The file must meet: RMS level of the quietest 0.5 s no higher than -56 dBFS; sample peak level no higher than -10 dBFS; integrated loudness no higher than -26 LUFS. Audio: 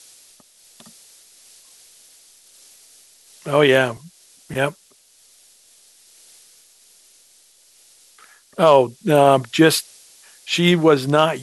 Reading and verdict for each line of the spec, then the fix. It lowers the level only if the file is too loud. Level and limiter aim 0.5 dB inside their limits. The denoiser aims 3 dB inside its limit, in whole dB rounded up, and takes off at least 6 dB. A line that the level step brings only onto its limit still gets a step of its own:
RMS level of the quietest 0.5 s -54 dBFS: fail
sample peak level -1.5 dBFS: fail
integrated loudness -17.0 LUFS: fail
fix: gain -9.5 dB

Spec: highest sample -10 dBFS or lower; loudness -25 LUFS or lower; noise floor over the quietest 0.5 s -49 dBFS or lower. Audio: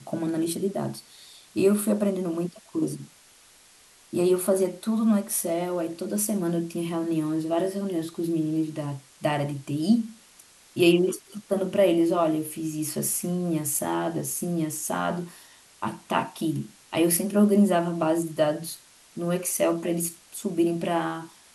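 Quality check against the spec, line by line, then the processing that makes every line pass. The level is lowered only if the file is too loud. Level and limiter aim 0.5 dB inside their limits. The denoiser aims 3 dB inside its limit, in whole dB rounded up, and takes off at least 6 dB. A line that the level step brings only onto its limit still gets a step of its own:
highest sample -8.0 dBFS: fail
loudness -26.0 LUFS: OK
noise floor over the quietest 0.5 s -55 dBFS: OK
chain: limiter -10.5 dBFS

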